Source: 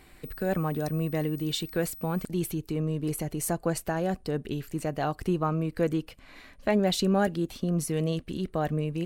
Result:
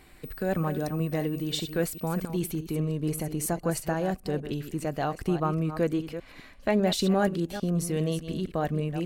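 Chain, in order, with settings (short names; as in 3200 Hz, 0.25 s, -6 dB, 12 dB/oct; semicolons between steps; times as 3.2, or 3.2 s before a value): reverse delay 0.2 s, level -10.5 dB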